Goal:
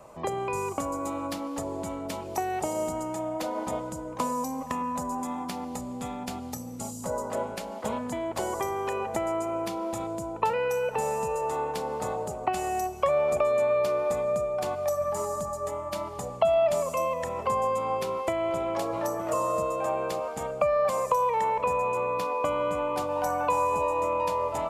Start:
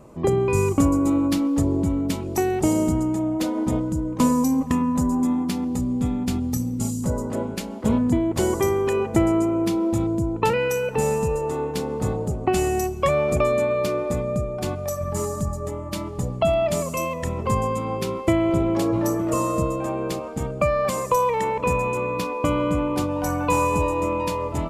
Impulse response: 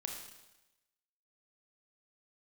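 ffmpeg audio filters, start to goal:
-filter_complex "[0:a]asplit=2[link_01][link_02];[1:a]atrim=start_sample=2205,asetrate=35280,aresample=44100[link_03];[link_02][link_03]afir=irnorm=-1:irlink=0,volume=-16.5dB[link_04];[link_01][link_04]amix=inputs=2:normalize=0,acrossover=split=180|1200[link_05][link_06][link_07];[link_05]acompressor=threshold=-36dB:ratio=4[link_08];[link_06]acompressor=threshold=-22dB:ratio=4[link_09];[link_07]acompressor=threshold=-40dB:ratio=4[link_10];[link_08][link_09][link_10]amix=inputs=3:normalize=0,lowshelf=frequency=460:width_type=q:width=1.5:gain=-10"

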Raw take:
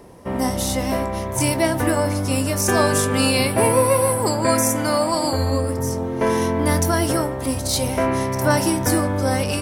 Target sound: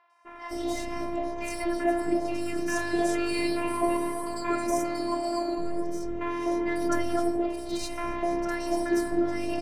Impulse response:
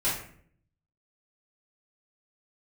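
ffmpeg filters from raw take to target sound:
-filter_complex "[0:a]highpass=41,aemphasis=mode=reproduction:type=cd,afftfilt=real='hypot(re,im)*cos(PI*b)':imag='0':win_size=512:overlap=0.75,acrossover=split=930|3800[link_01][link_02][link_03];[link_03]adelay=100[link_04];[link_01]adelay=250[link_05];[link_05][link_02][link_04]amix=inputs=3:normalize=0,adynamicsmooth=sensitivity=8:basefreq=7100,volume=-3dB"

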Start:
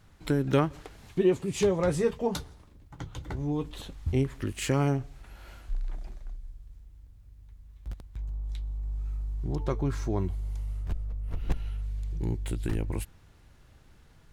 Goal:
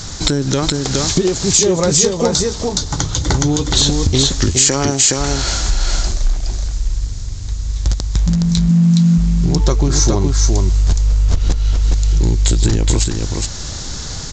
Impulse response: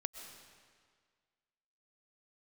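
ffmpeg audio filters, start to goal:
-filter_complex "[0:a]asettb=1/sr,asplit=3[link_01][link_02][link_03];[link_01]atrim=end=4.484[link_04];[link_02]atrim=start=4.48:end=5.18,asetpts=PTS-STARTPTS,afade=type=in:duration=0.004:curve=qsin,afade=type=out:start_time=0.696:duration=0.004:curve=qsin,highpass=frequency=320:poles=1[link_05];[link_03]atrim=start=5.176[link_06];[link_04][link_05]acrossfade=duration=0.004:curve1=hsin:curve2=qsin[link_07];[link_07][link_06]acrossfade=duration=0.004:curve1=qsin:curve2=hsin,acompressor=threshold=-40dB:ratio=12,aexciter=amount=5.7:drive=7.6:freq=3900,acrusher=bits=6:mode=log:mix=0:aa=0.000001,asplit=3[link_08][link_09][link_10];[link_08]afade=type=out:start_time=8.26:duration=0.02[link_11];[link_09]afreqshift=120,afade=type=in:start_time=8.26:duration=0.02,afade=type=out:start_time=9.17:duration=0.02[link_12];[link_10]afade=type=in:start_time=9.17:duration=0.02[link_13];[link_11][link_12][link_13]amix=inputs=3:normalize=0,asplit=2[link_14][link_15];[link_15]aecho=0:1:418:0.668[link_16];[link_14][link_16]amix=inputs=2:normalize=0,aresample=16000,aresample=44100,alimiter=level_in=28dB:limit=-1dB:release=50:level=0:latency=1,volume=-1dB"

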